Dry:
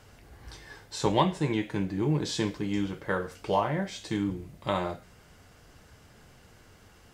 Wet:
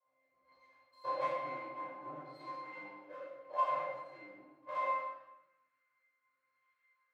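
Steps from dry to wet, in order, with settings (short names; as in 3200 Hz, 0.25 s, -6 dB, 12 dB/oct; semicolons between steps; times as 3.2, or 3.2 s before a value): tone controls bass -5 dB, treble -11 dB; octave resonator C, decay 0.43 s; power-law curve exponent 1.4; rotary speaker horn 1 Hz; shoebox room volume 750 m³, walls mixed, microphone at 5.2 m; high-pass sweep 750 Hz -> 1500 Hz, 4.9–5.75; gain +8 dB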